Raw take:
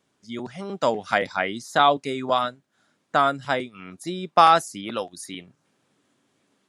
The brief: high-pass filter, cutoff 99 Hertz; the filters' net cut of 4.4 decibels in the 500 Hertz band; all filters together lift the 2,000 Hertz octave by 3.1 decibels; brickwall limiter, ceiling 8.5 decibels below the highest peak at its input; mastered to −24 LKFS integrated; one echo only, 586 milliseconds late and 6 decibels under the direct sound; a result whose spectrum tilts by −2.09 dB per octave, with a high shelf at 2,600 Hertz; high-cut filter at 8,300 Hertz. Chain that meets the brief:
high-pass filter 99 Hz
low-pass filter 8,300 Hz
parametric band 500 Hz −6.5 dB
parametric band 2,000 Hz +7.5 dB
high-shelf EQ 2,600 Hz −6.5 dB
brickwall limiter −11.5 dBFS
single-tap delay 586 ms −6 dB
level +3 dB

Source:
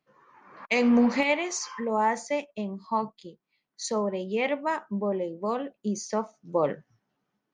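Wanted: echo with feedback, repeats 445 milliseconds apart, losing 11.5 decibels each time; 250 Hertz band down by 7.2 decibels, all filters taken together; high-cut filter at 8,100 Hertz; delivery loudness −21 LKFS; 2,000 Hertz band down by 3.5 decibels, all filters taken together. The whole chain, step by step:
low-pass filter 8,100 Hz
parametric band 250 Hz −8 dB
parametric band 2,000 Hz −4 dB
repeating echo 445 ms, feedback 27%, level −11.5 dB
level +10 dB

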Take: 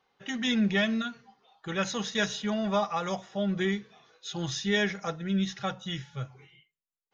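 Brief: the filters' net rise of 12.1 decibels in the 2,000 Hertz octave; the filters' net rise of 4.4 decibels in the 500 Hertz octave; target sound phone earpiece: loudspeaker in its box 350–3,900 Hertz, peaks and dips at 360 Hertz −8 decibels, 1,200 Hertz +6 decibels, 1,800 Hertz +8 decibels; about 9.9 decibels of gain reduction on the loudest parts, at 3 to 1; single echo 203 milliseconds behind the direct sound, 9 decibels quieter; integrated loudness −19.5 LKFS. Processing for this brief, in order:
parametric band 500 Hz +8.5 dB
parametric band 2,000 Hz +6 dB
downward compressor 3 to 1, threshold −31 dBFS
loudspeaker in its box 350–3,900 Hz, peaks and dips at 360 Hz −8 dB, 1,200 Hz +6 dB, 1,800 Hz +8 dB
single-tap delay 203 ms −9 dB
level +12.5 dB

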